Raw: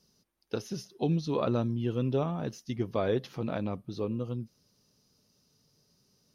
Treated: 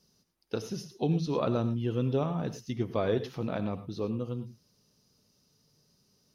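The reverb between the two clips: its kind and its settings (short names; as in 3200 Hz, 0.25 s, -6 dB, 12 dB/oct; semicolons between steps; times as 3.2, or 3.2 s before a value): non-linear reverb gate 0.13 s rising, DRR 11 dB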